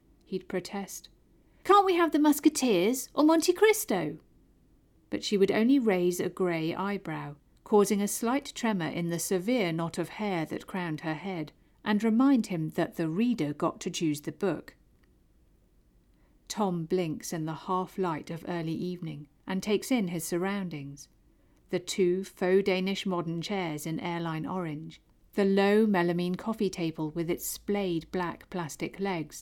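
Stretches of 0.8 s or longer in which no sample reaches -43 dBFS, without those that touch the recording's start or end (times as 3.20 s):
4.17–5.12 s
14.69–16.50 s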